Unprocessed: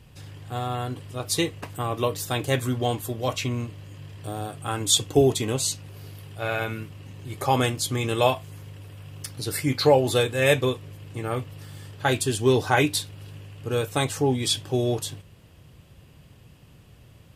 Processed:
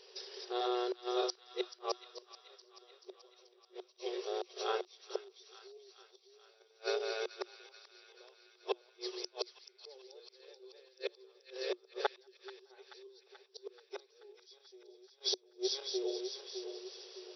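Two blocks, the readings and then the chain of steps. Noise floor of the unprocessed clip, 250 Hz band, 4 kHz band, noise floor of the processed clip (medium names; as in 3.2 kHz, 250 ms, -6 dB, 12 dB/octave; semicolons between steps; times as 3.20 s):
-52 dBFS, under -15 dB, -12.5 dB, -68 dBFS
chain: backward echo that repeats 304 ms, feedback 57%, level -2.5 dB; high-order bell 1.3 kHz -15 dB 2.9 oct; inverted gate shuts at -21 dBFS, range -41 dB; in parallel at -1 dB: compression, threshold -44 dBFS, peak gain reduction 16 dB; on the sum: FFT band-pass 360–5900 Hz; on a send: feedback echo behind a high-pass 433 ms, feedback 64%, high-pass 1.4 kHz, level -13 dB; on the sum: trim +5.5 dB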